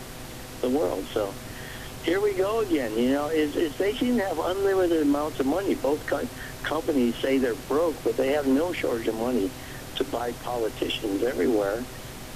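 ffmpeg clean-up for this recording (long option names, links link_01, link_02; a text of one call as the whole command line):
ffmpeg -i in.wav -af "bandreject=frequency=126.5:width_type=h:width=4,bandreject=frequency=253:width_type=h:width=4,bandreject=frequency=379.5:width_type=h:width=4,bandreject=frequency=506:width_type=h:width=4,bandreject=frequency=632.5:width_type=h:width=4,bandreject=frequency=759:width_type=h:width=4,afftdn=noise_reduction=30:noise_floor=-39" out.wav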